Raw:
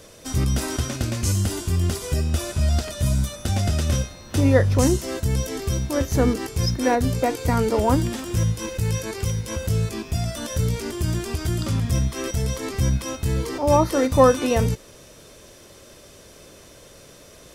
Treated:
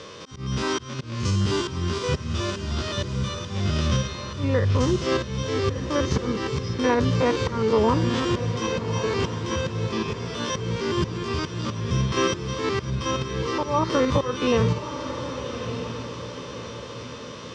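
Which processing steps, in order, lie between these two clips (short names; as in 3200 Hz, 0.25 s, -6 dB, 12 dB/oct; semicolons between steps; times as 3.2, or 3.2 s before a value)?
stepped spectrum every 50 ms; dynamic EQ 150 Hz, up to +3 dB, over -35 dBFS, Q 0.86; auto swell 0.502 s; compressor 10:1, threshold -23 dBFS, peak gain reduction 10.5 dB; speaker cabinet 110–5400 Hz, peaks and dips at 280 Hz -5 dB, 420 Hz +3 dB, 700 Hz -10 dB, 1100 Hz +9 dB, 3100 Hz +4 dB; on a send: diffused feedback echo 1.201 s, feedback 47%, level -9 dB; on the sum: gain +8 dB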